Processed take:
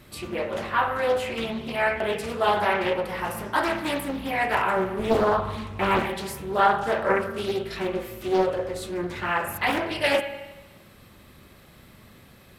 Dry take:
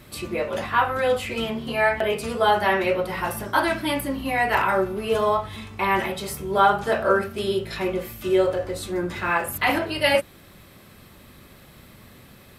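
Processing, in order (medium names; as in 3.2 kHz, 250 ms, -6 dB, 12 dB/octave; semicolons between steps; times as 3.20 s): 4.99–6.03 s: bass shelf 430 Hz +8.5 dB; spring tank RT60 1.2 s, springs 53/59 ms, chirp 75 ms, DRR 8.5 dB; loudspeaker Doppler distortion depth 0.66 ms; trim -3 dB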